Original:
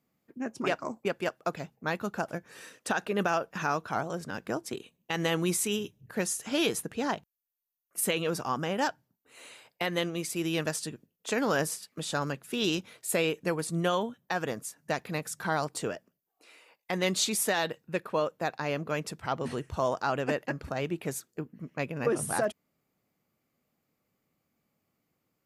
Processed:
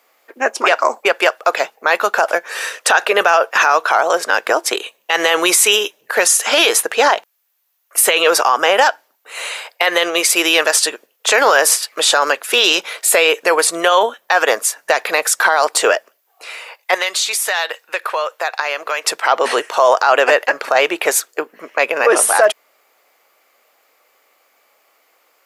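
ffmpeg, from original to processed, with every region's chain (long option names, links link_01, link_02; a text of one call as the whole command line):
ffmpeg -i in.wav -filter_complex "[0:a]asettb=1/sr,asplit=3[link_01][link_02][link_03];[link_01]atrim=end=16.944[link_04];[link_02]atrim=start=16.94:end=19.07,asetpts=PTS-STARTPTS,afade=type=in:duration=0.004:curve=qsin,afade=type=out:start_time=2.126:duration=0.004:curve=qsin,highpass=frequency=1000:poles=1,acompressor=threshold=-40dB:ratio=4:attack=3.2:release=140:knee=1:detection=peak[link_05];[link_03]atrim=start=19.066[link_06];[link_04][link_05]acrossfade=duration=0.004:curve1=hsin:curve2=qsin[link_07];[link_07][link_06]acrossfade=duration=0.004:curve1=qsin:curve2=hsin,highpass=frequency=480:width=0.5412,highpass=frequency=480:width=1.3066,equalizer=frequency=1700:width_type=o:width=2.9:gain=4.5,alimiter=level_in=22.5dB:limit=-1dB:release=50:level=0:latency=1,volume=-1dB" out.wav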